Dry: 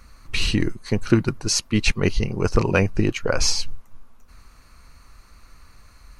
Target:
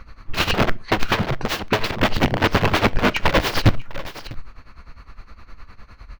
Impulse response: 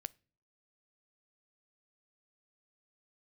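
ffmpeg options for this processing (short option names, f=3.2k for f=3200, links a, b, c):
-filter_complex "[0:a]aeval=exprs='(mod(8.41*val(0)+1,2)-1)/8.41':c=same,aecho=1:1:652:0.224,tremolo=f=9.8:d=0.82,asplit=2[a][b];[1:a]atrim=start_sample=2205,afade=t=out:st=0.19:d=0.01,atrim=end_sample=8820,lowpass=3.6k[c];[b][c]afir=irnorm=-1:irlink=0,volume=19dB[d];[a][d]amix=inputs=2:normalize=0,volume=-6.5dB"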